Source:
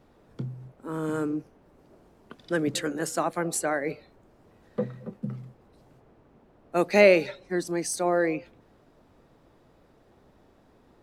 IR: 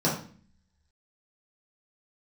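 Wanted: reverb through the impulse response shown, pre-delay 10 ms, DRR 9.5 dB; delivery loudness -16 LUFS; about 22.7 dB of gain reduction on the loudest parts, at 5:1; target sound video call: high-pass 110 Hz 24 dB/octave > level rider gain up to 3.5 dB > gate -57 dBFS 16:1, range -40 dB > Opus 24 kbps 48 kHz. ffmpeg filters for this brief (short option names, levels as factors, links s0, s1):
-filter_complex "[0:a]acompressor=threshold=0.0112:ratio=5,asplit=2[s0][s1];[1:a]atrim=start_sample=2205,adelay=10[s2];[s1][s2]afir=irnorm=-1:irlink=0,volume=0.0794[s3];[s0][s3]amix=inputs=2:normalize=0,highpass=f=110:w=0.5412,highpass=f=110:w=1.3066,dynaudnorm=m=1.5,agate=range=0.01:threshold=0.00141:ratio=16,volume=18.8" -ar 48000 -c:a libopus -b:a 24k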